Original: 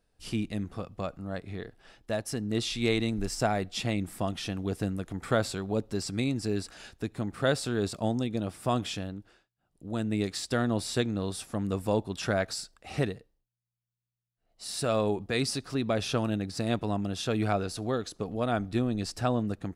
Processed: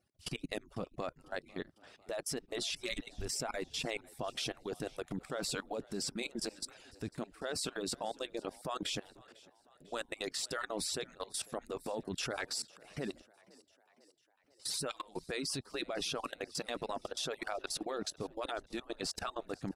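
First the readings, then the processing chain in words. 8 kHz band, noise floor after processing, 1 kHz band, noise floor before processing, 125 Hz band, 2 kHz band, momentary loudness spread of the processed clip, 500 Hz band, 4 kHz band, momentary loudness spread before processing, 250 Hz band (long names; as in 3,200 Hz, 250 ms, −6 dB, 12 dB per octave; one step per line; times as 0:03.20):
−1.0 dB, −71 dBFS, −8.0 dB, below −85 dBFS, −17.5 dB, −6.0 dB, 7 LU, −9.0 dB, −2.5 dB, 9 LU, −13.5 dB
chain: harmonic-percussive split with one part muted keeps percussive
output level in coarse steps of 21 dB
echo with shifted repeats 499 ms, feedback 59%, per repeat +46 Hz, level −23.5 dB
level +4.5 dB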